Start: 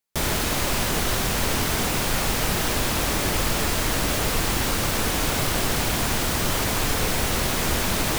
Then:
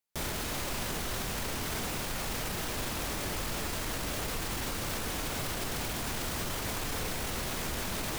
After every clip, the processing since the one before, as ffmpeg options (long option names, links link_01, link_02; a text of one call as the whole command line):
ffmpeg -i in.wav -af "alimiter=limit=-20dB:level=0:latency=1:release=28,volume=-5.5dB" out.wav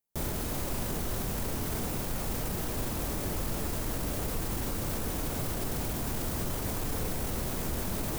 ffmpeg -i in.wav -af "equalizer=frequency=2800:width=0.32:gain=-11,volume=4.5dB" out.wav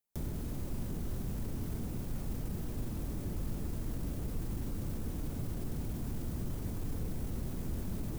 ffmpeg -i in.wav -filter_complex "[0:a]acrossover=split=330[link_01][link_02];[link_02]acompressor=threshold=-47dB:ratio=10[link_03];[link_01][link_03]amix=inputs=2:normalize=0,volume=-2dB" out.wav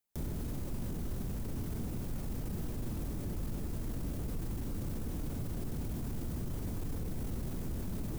ffmpeg -i in.wav -af "alimiter=level_in=7.5dB:limit=-24dB:level=0:latency=1:release=10,volume=-7.5dB,volume=1.5dB" out.wav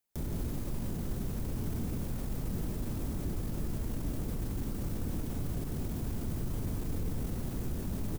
ffmpeg -i in.wav -af "aecho=1:1:171:0.531,volume=1.5dB" out.wav